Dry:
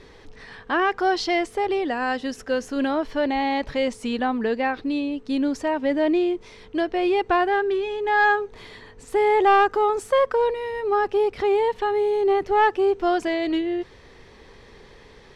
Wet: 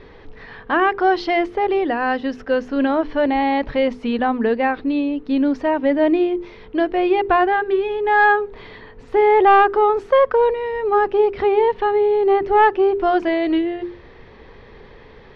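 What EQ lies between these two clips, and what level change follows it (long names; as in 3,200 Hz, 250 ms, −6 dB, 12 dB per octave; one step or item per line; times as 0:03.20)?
high-frequency loss of the air 280 metres
mains-hum notches 50/100/150/200/250/300/350/400 Hz
+6.0 dB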